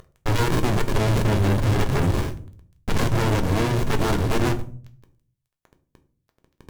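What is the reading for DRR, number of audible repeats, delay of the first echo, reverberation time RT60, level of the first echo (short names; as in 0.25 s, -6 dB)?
7.0 dB, none, none, 0.45 s, none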